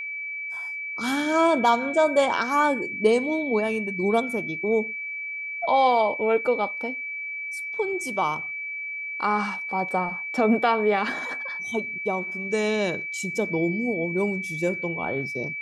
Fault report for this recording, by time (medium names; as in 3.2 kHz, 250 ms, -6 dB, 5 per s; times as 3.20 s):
whine 2.3 kHz -30 dBFS